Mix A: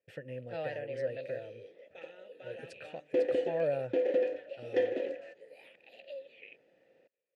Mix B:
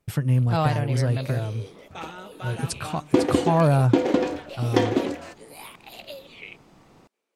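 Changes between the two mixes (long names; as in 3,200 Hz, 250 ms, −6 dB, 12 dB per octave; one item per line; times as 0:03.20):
first sound: add high-pass filter 250 Hz 24 dB per octave
master: remove formant filter e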